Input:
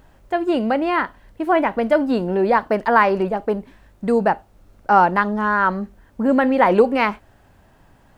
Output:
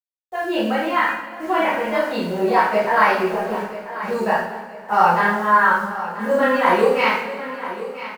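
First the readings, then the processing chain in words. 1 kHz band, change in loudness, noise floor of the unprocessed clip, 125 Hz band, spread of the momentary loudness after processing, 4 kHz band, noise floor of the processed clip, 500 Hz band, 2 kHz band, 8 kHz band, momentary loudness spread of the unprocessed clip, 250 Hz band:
+1.0 dB, -0.5 dB, -54 dBFS, -3.5 dB, 13 LU, +5.0 dB, -38 dBFS, -1.0 dB, +3.0 dB, no reading, 12 LU, -4.5 dB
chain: level-controlled noise filter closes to 490 Hz, open at -10.5 dBFS; spectral noise reduction 10 dB; tilt EQ +2.5 dB/octave; in parallel at -1 dB: peak limiter -10 dBFS, peak gain reduction 8.5 dB; on the sum: bit crusher 7-bit; chorus voices 6, 0.77 Hz, delay 28 ms, depth 1.1 ms; on a send: feedback delay 986 ms, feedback 37%, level -13.5 dB; on the sum: two-slope reverb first 0.59 s, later 2.7 s, from -17 dB, DRR -9 dB; trim -9.5 dB

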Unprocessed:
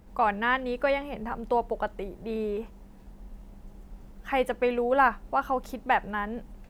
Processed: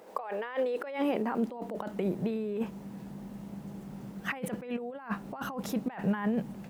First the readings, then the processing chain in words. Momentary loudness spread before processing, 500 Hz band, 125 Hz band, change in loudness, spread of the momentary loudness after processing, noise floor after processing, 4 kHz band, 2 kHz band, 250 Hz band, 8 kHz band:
12 LU, -5.5 dB, +6.0 dB, -6.5 dB, 13 LU, -46 dBFS, -6.5 dB, -10.5 dB, +3.0 dB, no reading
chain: compressor with a negative ratio -36 dBFS, ratio -1; high-pass sweep 490 Hz -> 160 Hz, 0.38–2.24 s

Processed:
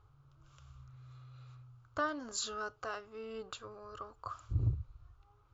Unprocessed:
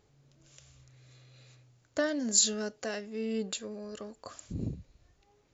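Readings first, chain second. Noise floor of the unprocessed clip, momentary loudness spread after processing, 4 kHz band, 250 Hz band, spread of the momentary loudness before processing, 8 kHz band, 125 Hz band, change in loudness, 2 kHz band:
-69 dBFS, 20 LU, -10.0 dB, -12.5 dB, 19 LU, no reading, +5.0 dB, -8.0 dB, -2.5 dB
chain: FFT filter 120 Hz 0 dB, 200 Hz -28 dB, 310 Hz -15 dB, 610 Hz -16 dB, 1.3 kHz +4 dB, 1.8 kHz -19 dB, 3 kHz -14 dB, 9.3 kHz -26 dB; trim +7.5 dB

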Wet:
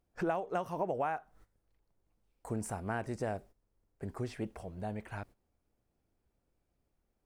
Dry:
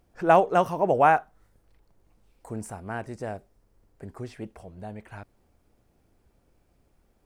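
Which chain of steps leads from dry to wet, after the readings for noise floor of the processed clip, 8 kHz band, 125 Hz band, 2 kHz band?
-81 dBFS, -2.0 dB, -4.5 dB, -11.5 dB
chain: gate -52 dBFS, range -14 dB; compression 16:1, threshold -30 dBFS, peak gain reduction 18.5 dB

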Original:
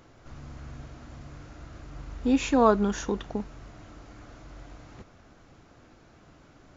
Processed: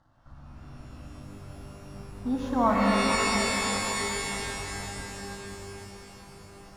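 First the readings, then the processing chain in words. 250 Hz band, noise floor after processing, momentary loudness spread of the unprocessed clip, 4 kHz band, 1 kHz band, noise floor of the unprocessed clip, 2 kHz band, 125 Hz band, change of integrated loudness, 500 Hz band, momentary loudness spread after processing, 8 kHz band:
-1.0 dB, -49 dBFS, 23 LU, +11.0 dB, +3.0 dB, -56 dBFS, +10.0 dB, +2.0 dB, -2.0 dB, -2.5 dB, 22 LU, no reading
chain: in parallel at +1 dB: gain riding 2 s; on the sum: distance through air 230 m; crossover distortion -52.5 dBFS; static phaser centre 1 kHz, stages 4; echo whose repeats swap between lows and highs 243 ms, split 920 Hz, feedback 70%, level -6 dB; pitch-shifted reverb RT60 3.3 s, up +12 st, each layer -2 dB, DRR 1 dB; trim -7 dB

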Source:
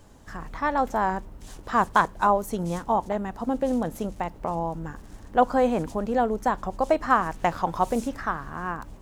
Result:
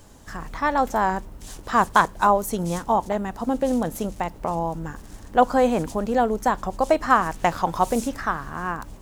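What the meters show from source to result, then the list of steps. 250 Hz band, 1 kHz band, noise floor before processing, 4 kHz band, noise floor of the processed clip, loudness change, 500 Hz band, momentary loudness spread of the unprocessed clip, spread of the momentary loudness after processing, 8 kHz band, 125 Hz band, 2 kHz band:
+2.5 dB, +3.0 dB, -46 dBFS, +5.5 dB, -43 dBFS, +3.0 dB, +2.5 dB, 12 LU, 12 LU, +8.0 dB, +2.5 dB, +3.5 dB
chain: treble shelf 3.8 kHz +6.5 dB; trim +2.5 dB

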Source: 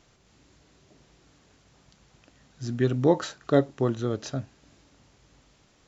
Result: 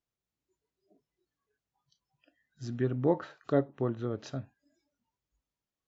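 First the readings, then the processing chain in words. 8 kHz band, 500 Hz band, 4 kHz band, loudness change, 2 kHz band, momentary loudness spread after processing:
no reading, -6.0 dB, -12.5 dB, -6.0 dB, -8.0 dB, 12 LU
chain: spectral noise reduction 26 dB; low-pass that closes with the level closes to 1.9 kHz, closed at -22.5 dBFS; trim -6 dB

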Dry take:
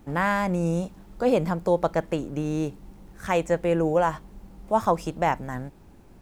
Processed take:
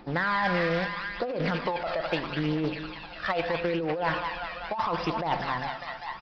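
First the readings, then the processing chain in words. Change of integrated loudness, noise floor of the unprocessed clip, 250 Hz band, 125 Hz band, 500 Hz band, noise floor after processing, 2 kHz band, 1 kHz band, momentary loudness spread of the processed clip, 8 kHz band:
-4.0 dB, -50 dBFS, -4.5 dB, -4.5 dB, -5.5 dB, -42 dBFS, +3.0 dB, -2.0 dB, 9 LU, under -15 dB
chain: CVSD coder 64 kbps; bass shelf 470 Hz -10.5 dB; on a send: feedback echo behind a high-pass 199 ms, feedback 79%, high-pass 1.5 kHz, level -7.5 dB; on the sum: phaser 0.77 Hz, delay 1.7 ms, feedback 53%; in parallel at -4.5 dB: hard clipper -24 dBFS, distortion -8 dB; on the sum: simulated room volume 2800 m³, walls furnished, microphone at 0.9 m; compressor with a negative ratio -25 dBFS, ratio -1; resampled via 11.025 kHz; bass shelf 190 Hz -8.5 dB; saturation -13.5 dBFS, distortion -28 dB; loudspeaker Doppler distortion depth 0.16 ms

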